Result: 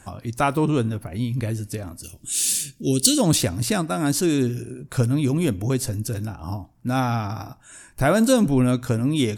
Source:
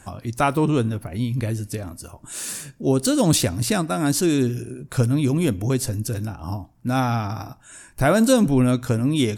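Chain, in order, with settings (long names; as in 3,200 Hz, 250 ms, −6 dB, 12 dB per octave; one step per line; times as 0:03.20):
0:02.03–0:03.18: drawn EQ curve 340 Hz 0 dB, 990 Hz −20 dB, 3,100 Hz +10 dB
level −1 dB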